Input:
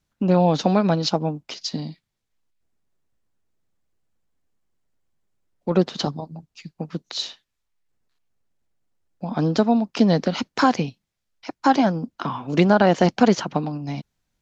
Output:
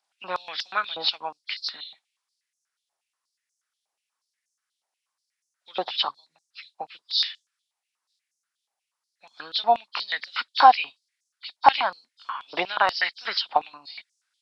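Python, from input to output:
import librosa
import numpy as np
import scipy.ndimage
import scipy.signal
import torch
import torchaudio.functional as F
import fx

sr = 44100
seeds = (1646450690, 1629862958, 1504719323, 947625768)

y = fx.freq_compress(x, sr, knee_hz=3100.0, ratio=1.5)
y = fx.high_shelf(y, sr, hz=4300.0, db=10.0)
y = fx.filter_held_highpass(y, sr, hz=8.3, low_hz=790.0, high_hz=6200.0)
y = y * librosa.db_to_amplitude(-3.0)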